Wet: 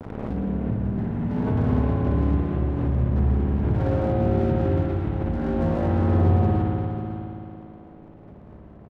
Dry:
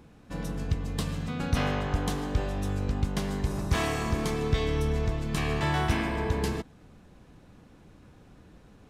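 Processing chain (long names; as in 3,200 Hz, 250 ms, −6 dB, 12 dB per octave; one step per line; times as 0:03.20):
partials spread apart or drawn together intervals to 78%
low-pass filter 1,600 Hz 24 dB per octave
spectral tilt −4 dB per octave
downward compressor 3 to 1, threshold −28 dBFS, peak gain reduction 15 dB
notch comb filter 1,200 Hz
dead-zone distortion −47 dBFS
on a send: single-tap delay 542 ms −11.5 dB
on the sum: spring reverb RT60 3 s, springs 56 ms, chirp 55 ms, DRR −4.5 dB
background raised ahead of every attack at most 35 dB per second
level +5.5 dB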